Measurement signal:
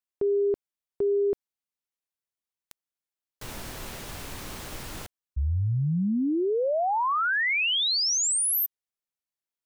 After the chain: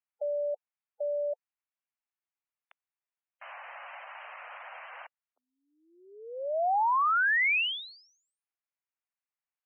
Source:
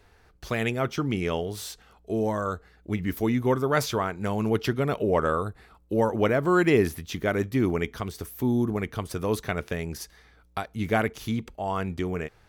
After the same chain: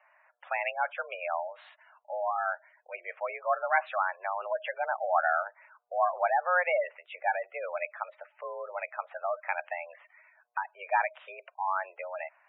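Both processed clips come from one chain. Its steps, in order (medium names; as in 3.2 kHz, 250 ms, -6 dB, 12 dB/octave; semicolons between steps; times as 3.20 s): mistuned SSB +180 Hz 480–2600 Hz; spectral gate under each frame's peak -15 dB strong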